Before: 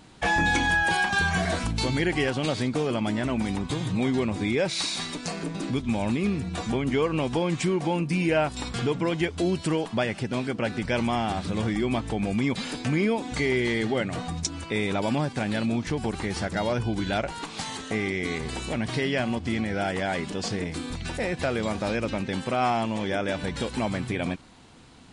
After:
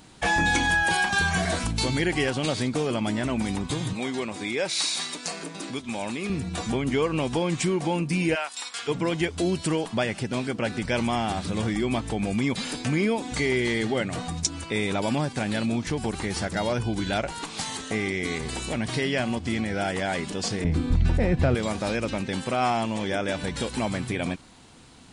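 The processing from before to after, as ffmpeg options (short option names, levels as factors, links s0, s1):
-filter_complex "[0:a]asettb=1/sr,asplit=3[s0][s1][s2];[s0]atrim=end=3.934[s3];[s1]atrim=start=3.93:end=6.3,asetpts=PTS-STARTPTS,afade=t=in:d=0.004:c=qsin,afade=t=out:st=2.366:d=0.004:c=qsin,highpass=f=460:p=1[s4];[s2]atrim=start=6.296[s5];[s3][s4]acrossfade=d=0.004:c1=hsin:c2=qsin[s6];[s6][s5]acrossfade=d=0.004:c1=qsin:c2=hsin,asplit=3[s7][s8][s9];[s7]afade=t=out:st=8.34:d=0.02[s10];[s8]highpass=1100,afade=t=in:st=8.34:d=0.02,afade=t=out:st=8.87:d=0.02[s11];[s9]afade=t=in:st=8.87:d=0.02[s12];[s10][s11][s12]amix=inputs=3:normalize=0,asettb=1/sr,asplit=3[s13][s14][s15];[s13]atrim=end=20.644[s16];[s14]atrim=start=20.64:end=21.55,asetpts=PTS-STARTPTS,afade=t=in:d=0.004:c=qsin,afade=t=out:st=0.906:d=0.004:c=qsin,aemphasis=mode=reproduction:type=riaa[s17];[s15]atrim=start=21.546[s18];[s16][s17]acrossfade=d=0.004:c1=hsin:c2=qsin[s19];[s19][s18]acrossfade=d=0.004:c1=qsin:c2=hsin,highshelf=f=6600:g=8.5"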